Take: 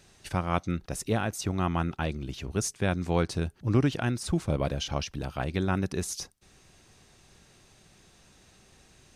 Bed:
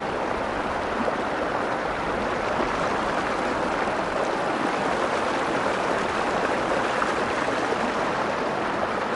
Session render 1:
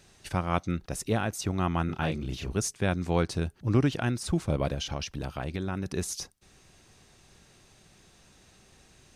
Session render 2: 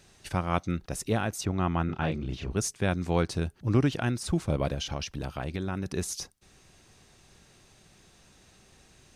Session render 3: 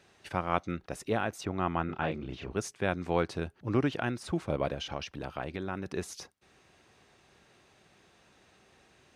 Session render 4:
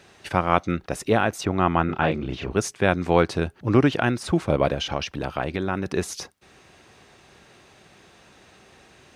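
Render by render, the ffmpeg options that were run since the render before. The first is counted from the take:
-filter_complex "[0:a]asettb=1/sr,asplit=3[a][b][c];[a]atrim=end=1.864[d];[b]atrim=start=1.86:end=2.53,asetpts=PTS-STARTPTS,afade=t=in:d=0.004:c=qsin,afade=t=out:st=0.666:d=0.004:c=qsin,asplit=2[e][f];[f]adelay=32,volume=-2.5dB[g];[e][g]amix=inputs=2:normalize=0,atrim=end_sample=29547[h];[c]atrim=start=2.526[i];[d][h]acrossfade=d=0.004:c1=hsin:c2=qsin[j];[j][i]acrossfade=d=0.004:c1=qsin:c2=hsin,asettb=1/sr,asplit=3[k][l][m];[k]atrim=end=4.744[n];[l]atrim=start=4.74:end=5.86,asetpts=PTS-STARTPTS,afade=t=in:d=0.004:c=qsin,afade=t=out:st=1.116:d=0.004:c=qsin,acompressor=threshold=-28dB:ratio=4:attack=3.2:release=140:knee=1:detection=peak[o];[m]atrim=start=5.856[p];[n][o]acrossfade=d=0.004:c1=hsin:c2=qsin[q];[q][p]acrossfade=d=0.004:c1=qsin:c2=hsin"
-filter_complex "[0:a]asettb=1/sr,asplit=3[a][b][c];[a]atrim=end=1.454[d];[b]atrim=start=1.45:end=2.57,asetpts=PTS-STARTPTS,afade=t=in:d=0.004:c=qsin,afade=t=out:st=1.116:d=0.004:c=qsin,aemphasis=mode=reproduction:type=50fm[e];[c]atrim=start=2.566[f];[d][e]acrossfade=d=0.004:c1=hsin:c2=qsin[g];[g][f]acrossfade=d=0.004:c1=qsin:c2=hsin"
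-af "highpass=58,bass=f=250:g=-8,treble=f=4k:g=-11"
-af "volume=10dB,alimiter=limit=-2dB:level=0:latency=1"

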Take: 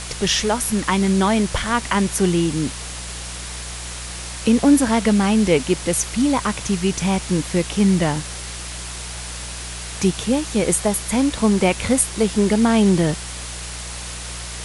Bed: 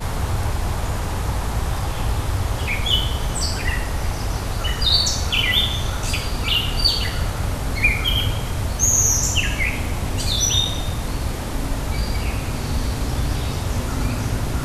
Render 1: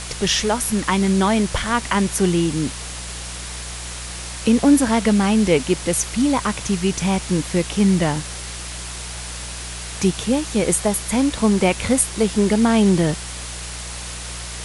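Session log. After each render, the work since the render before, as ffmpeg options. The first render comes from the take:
-af anull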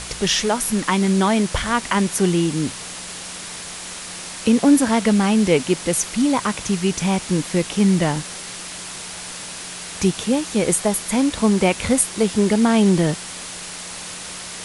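-af "bandreject=f=60:t=h:w=4,bandreject=f=120:t=h:w=4"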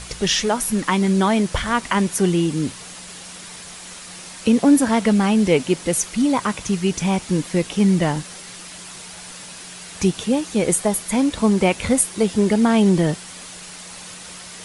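-af "afftdn=nr=6:nf=-33"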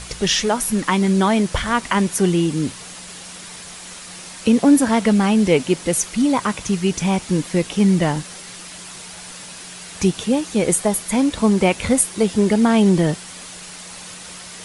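-af "volume=1dB"

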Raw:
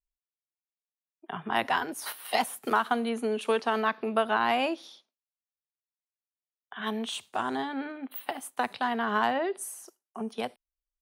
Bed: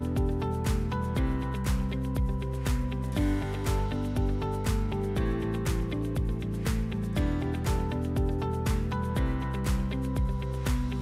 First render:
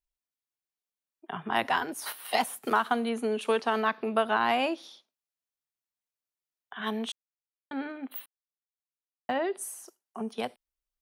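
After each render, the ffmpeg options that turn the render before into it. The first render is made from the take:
-filter_complex "[0:a]asplit=5[a][b][c][d][e];[a]atrim=end=7.12,asetpts=PTS-STARTPTS,afade=t=out:st=7.116:d=0.004:c=hsin[f];[b]atrim=start=7.12:end=7.71,asetpts=PTS-STARTPTS,volume=0[g];[c]atrim=start=7.71:end=8.26,asetpts=PTS-STARTPTS,afade=t=in:d=0.004:c=hsin,afade=t=out:st=0.546:d=0.004:c=hsin[h];[d]atrim=start=8.26:end=9.29,asetpts=PTS-STARTPTS,volume=0[i];[e]atrim=start=9.29,asetpts=PTS-STARTPTS,afade=t=in:d=0.004:c=hsin[j];[f][g][h][i][j]concat=n=5:v=0:a=1"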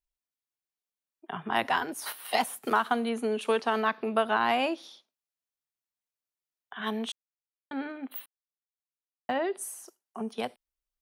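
-af anull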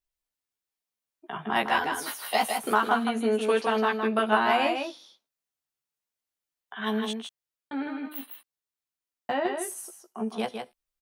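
-filter_complex "[0:a]asplit=2[a][b];[b]adelay=14,volume=-3dB[c];[a][c]amix=inputs=2:normalize=0,asplit=2[d][e];[e]aecho=0:1:158:0.531[f];[d][f]amix=inputs=2:normalize=0"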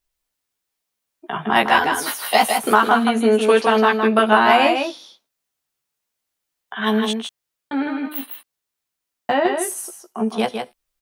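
-af "volume=9.5dB,alimiter=limit=-1dB:level=0:latency=1"

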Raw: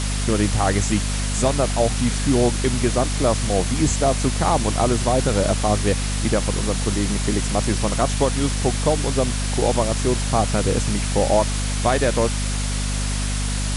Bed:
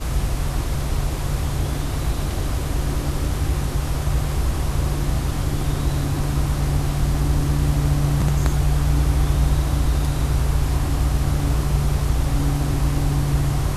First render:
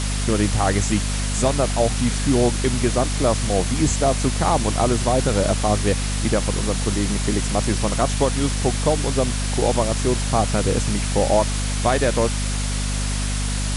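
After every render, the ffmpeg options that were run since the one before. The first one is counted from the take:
-af anull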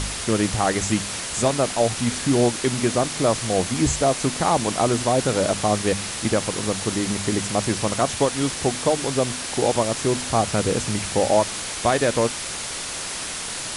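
-af "bandreject=f=50:t=h:w=4,bandreject=f=100:t=h:w=4,bandreject=f=150:t=h:w=4,bandreject=f=200:t=h:w=4,bandreject=f=250:t=h:w=4"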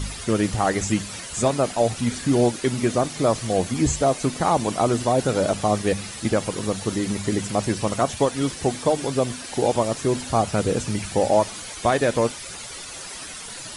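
-af "afftdn=nr=11:nf=-31"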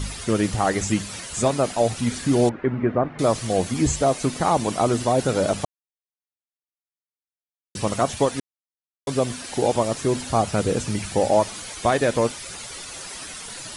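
-filter_complex "[0:a]asettb=1/sr,asplit=3[a][b][c];[a]atrim=end=2.494[d];[b]atrim=start=2.49:end=3.19,asetpts=PTS-STARTPTS,afade=t=in:d=0.004:c=qsin,afade=t=out:st=0.696:d=0.004:c=qsin,lowpass=f=1.9k:w=0.5412,lowpass=f=1.9k:w=1.3066[e];[c]atrim=start=3.186[f];[d][e]acrossfade=d=0.004:c1=hsin:c2=qsin[g];[g][f]acrossfade=d=0.004:c1=qsin:c2=hsin,asplit=5[h][i][j][k][l];[h]atrim=end=5.65,asetpts=PTS-STARTPTS,afade=t=out:st=5.646:d=0.004:c=hsin[m];[i]atrim=start=5.65:end=7.75,asetpts=PTS-STARTPTS,volume=0[n];[j]atrim=start=7.75:end=8.4,asetpts=PTS-STARTPTS,afade=t=in:d=0.004:c=hsin,afade=t=out:st=0.646:d=0.004:c=hsin[o];[k]atrim=start=8.4:end=9.07,asetpts=PTS-STARTPTS,volume=0[p];[l]atrim=start=9.07,asetpts=PTS-STARTPTS,afade=t=in:d=0.004:c=hsin[q];[m][n][o][p][q]concat=n=5:v=0:a=1"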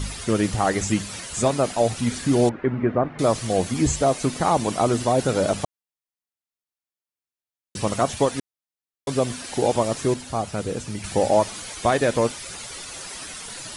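-filter_complex "[0:a]asplit=3[a][b][c];[a]atrim=end=10.142[d];[b]atrim=start=10.138:end=11.042,asetpts=PTS-STARTPTS,volume=-5.5dB[e];[c]atrim=start=11.038[f];[d][e]acrossfade=d=0.004:c1=hsin:c2=hsin[g];[g][f]acrossfade=d=0.004:c1=hsin:c2=hsin"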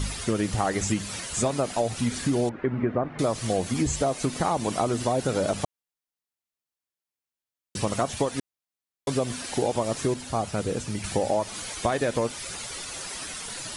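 -af "acompressor=threshold=-21dB:ratio=6"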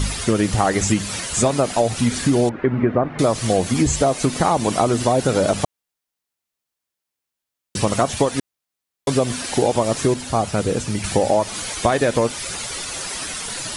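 -af "volume=7.5dB"

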